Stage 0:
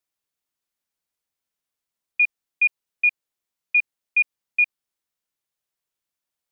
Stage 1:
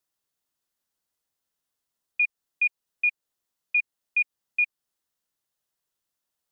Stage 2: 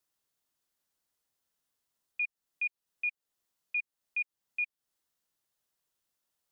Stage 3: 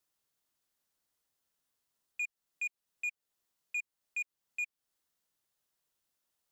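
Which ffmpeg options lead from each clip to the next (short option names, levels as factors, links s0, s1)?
-filter_complex "[0:a]equalizer=f=2400:w=1.5:g=-2.5,bandreject=f=2300:w=13,asplit=2[s0][s1];[s1]acompressor=threshold=0.0282:ratio=6,volume=0.75[s2];[s0][s2]amix=inputs=2:normalize=0,volume=0.75"
-af "alimiter=level_in=1.33:limit=0.0631:level=0:latency=1:release=316,volume=0.75"
-af "asoftclip=type=tanh:threshold=0.0299"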